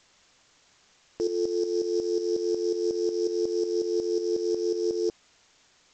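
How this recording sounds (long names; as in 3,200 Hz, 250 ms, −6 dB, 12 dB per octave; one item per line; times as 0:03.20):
a buzz of ramps at a fixed pitch in blocks of 8 samples
tremolo saw up 5.5 Hz, depth 65%
a quantiser's noise floor 10 bits, dither triangular
G.722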